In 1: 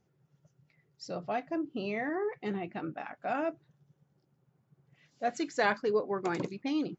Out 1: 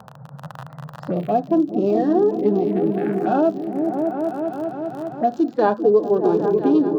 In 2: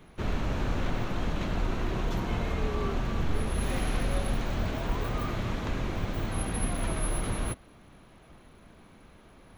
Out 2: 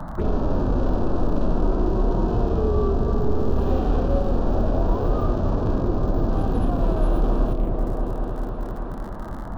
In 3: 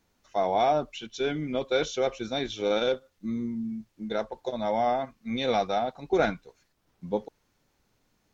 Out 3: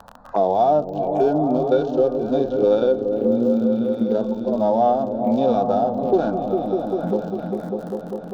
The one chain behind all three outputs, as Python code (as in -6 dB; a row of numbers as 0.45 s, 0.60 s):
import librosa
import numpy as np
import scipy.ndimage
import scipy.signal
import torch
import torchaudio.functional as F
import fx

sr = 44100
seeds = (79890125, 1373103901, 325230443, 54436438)

y = fx.wiener(x, sr, points=15)
y = fx.low_shelf(y, sr, hz=420.0, db=10.5)
y = fx.dmg_crackle(y, sr, seeds[0], per_s=47.0, level_db=-32.0)
y = fx.bass_treble(y, sr, bass_db=-14, treble_db=-9)
y = fx.env_phaser(y, sr, low_hz=360.0, high_hz=2100.0, full_db=-29.5)
y = fx.hpss(y, sr, part='percussive', gain_db=-14)
y = fx.echo_opening(y, sr, ms=199, hz=200, octaves=1, feedback_pct=70, wet_db=-3)
y = fx.band_squash(y, sr, depth_pct=70)
y = y * 10.0 ** (-20 / 20.0) / np.sqrt(np.mean(np.square(y)))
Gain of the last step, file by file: +14.0 dB, +11.5 dB, +9.0 dB